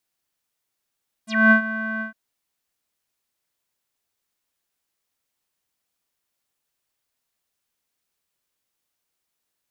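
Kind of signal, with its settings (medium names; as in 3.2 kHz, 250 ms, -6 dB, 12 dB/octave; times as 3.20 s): synth note square A3 12 dB/octave, low-pass 1.6 kHz, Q 12, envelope 3 oct, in 0.08 s, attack 241 ms, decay 0.10 s, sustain -15 dB, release 0.12 s, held 0.74 s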